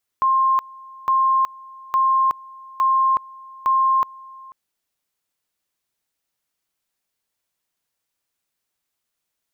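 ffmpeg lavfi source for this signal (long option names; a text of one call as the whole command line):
ffmpeg -f lavfi -i "aevalsrc='pow(10,(-14-23.5*gte(mod(t,0.86),0.37))/20)*sin(2*PI*1060*t)':duration=4.3:sample_rate=44100" out.wav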